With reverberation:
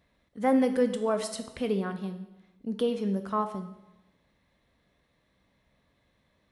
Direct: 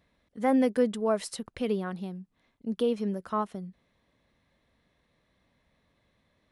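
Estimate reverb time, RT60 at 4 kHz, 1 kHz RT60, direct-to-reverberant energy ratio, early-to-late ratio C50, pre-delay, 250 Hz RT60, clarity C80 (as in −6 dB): 0.95 s, 0.85 s, 0.95 s, 7.5 dB, 10.5 dB, 7 ms, 1.1 s, 13.0 dB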